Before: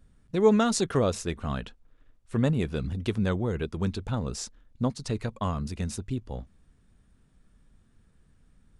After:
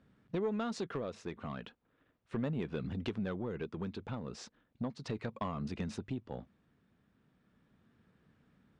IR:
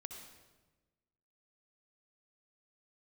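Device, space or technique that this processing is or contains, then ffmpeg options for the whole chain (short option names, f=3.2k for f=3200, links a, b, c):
AM radio: -af "highpass=150,lowpass=3.3k,acompressor=threshold=-33dB:ratio=4,asoftclip=type=tanh:threshold=-26.5dB,tremolo=f=0.36:d=0.34,volume=1dB"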